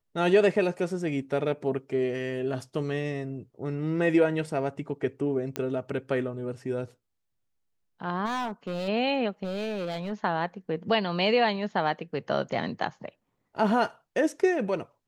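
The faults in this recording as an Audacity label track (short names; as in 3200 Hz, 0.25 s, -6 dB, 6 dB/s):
5.560000	5.560000	pop -14 dBFS
8.250000	8.890000	clipped -27.5 dBFS
9.430000	10.130000	clipped -28 dBFS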